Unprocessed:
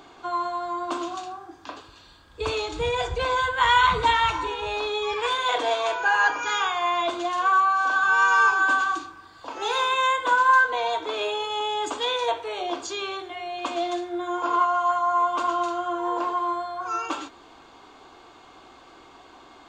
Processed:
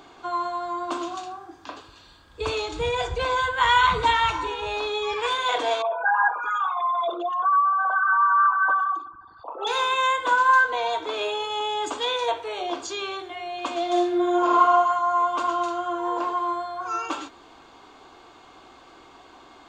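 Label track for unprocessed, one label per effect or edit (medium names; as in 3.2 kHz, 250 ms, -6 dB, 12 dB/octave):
5.820000	9.670000	resonances exaggerated exponent 3
13.850000	14.760000	reverb throw, RT60 0.88 s, DRR -1.5 dB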